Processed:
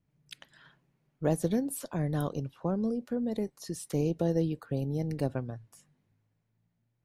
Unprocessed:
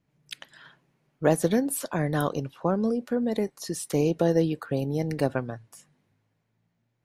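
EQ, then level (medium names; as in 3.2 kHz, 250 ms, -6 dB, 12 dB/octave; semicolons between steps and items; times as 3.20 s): bass shelf 160 Hz +10 dB; dynamic bell 1.6 kHz, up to -5 dB, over -42 dBFS, Q 0.94; -7.5 dB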